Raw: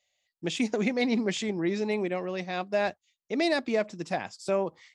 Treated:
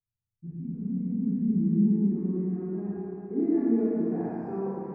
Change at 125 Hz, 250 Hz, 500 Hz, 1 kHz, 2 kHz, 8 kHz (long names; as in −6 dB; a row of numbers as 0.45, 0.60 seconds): +8.5 dB, +5.0 dB, −5.0 dB, can't be measured, below −20 dB, below −35 dB